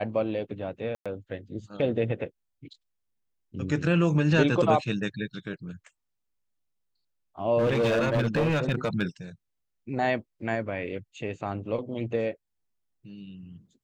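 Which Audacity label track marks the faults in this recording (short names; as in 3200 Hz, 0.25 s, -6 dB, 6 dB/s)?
0.950000	1.060000	gap 0.106 s
7.580000	9.030000	clipped -20.5 dBFS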